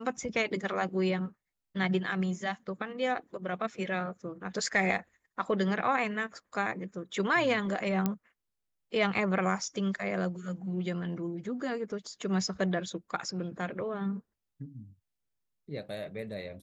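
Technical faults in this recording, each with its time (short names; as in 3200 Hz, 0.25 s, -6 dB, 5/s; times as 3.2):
8.06 pop -15 dBFS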